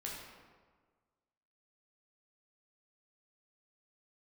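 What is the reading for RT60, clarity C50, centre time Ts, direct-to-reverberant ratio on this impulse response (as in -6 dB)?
1.5 s, 1.0 dB, 74 ms, -4.0 dB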